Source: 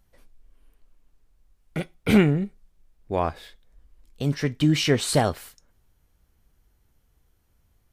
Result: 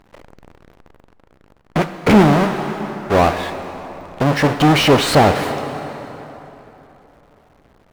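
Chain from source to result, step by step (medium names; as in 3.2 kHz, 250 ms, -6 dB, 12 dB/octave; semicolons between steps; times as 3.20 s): square wave that keeps the level; plate-style reverb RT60 3.5 s, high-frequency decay 0.7×, DRR 15 dB; overdrive pedal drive 23 dB, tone 1.2 kHz, clips at -4.5 dBFS; trim +3.5 dB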